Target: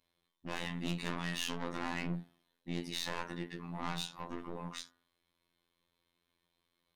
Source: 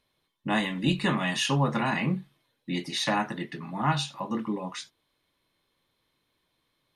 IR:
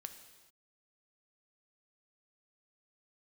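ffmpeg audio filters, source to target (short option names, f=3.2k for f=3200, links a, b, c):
-af "aeval=exprs='(tanh(28.2*val(0)+0.4)-tanh(0.4))/28.2':c=same,bandreject=f=53.84:t=h:w=4,bandreject=f=107.68:t=h:w=4,bandreject=f=161.52:t=h:w=4,bandreject=f=215.36:t=h:w=4,bandreject=f=269.2:t=h:w=4,bandreject=f=323.04:t=h:w=4,bandreject=f=376.88:t=h:w=4,bandreject=f=430.72:t=h:w=4,bandreject=f=484.56:t=h:w=4,bandreject=f=538.4:t=h:w=4,bandreject=f=592.24:t=h:w=4,bandreject=f=646.08:t=h:w=4,bandreject=f=699.92:t=h:w=4,bandreject=f=753.76:t=h:w=4,bandreject=f=807.6:t=h:w=4,bandreject=f=861.44:t=h:w=4,bandreject=f=915.28:t=h:w=4,bandreject=f=969.12:t=h:w=4,bandreject=f=1.02296k:t=h:w=4,bandreject=f=1.0768k:t=h:w=4,bandreject=f=1.13064k:t=h:w=4,bandreject=f=1.18448k:t=h:w=4,bandreject=f=1.23832k:t=h:w=4,bandreject=f=1.29216k:t=h:w=4,bandreject=f=1.346k:t=h:w=4,bandreject=f=1.39984k:t=h:w=4,bandreject=f=1.45368k:t=h:w=4,bandreject=f=1.50752k:t=h:w=4,bandreject=f=1.56136k:t=h:w=4,bandreject=f=1.6152k:t=h:w=4,bandreject=f=1.66904k:t=h:w=4,bandreject=f=1.72288k:t=h:w=4,bandreject=f=1.77672k:t=h:w=4,bandreject=f=1.83056k:t=h:w=4,bandreject=f=1.8844k:t=h:w=4,bandreject=f=1.93824k:t=h:w=4,afftfilt=real='hypot(re,im)*cos(PI*b)':imag='0':win_size=2048:overlap=0.75,volume=-1.5dB"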